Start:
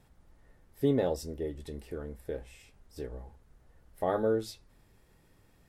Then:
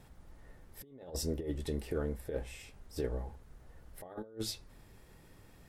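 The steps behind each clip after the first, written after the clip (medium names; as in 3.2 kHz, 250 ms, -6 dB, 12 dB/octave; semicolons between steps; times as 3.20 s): compressor with a negative ratio -37 dBFS, ratio -0.5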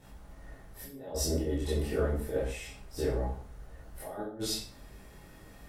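reverberation RT60 0.45 s, pre-delay 15 ms, DRR -8.5 dB; trim -2 dB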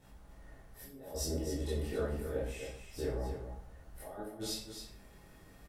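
delay 268 ms -8.5 dB; trim -5.5 dB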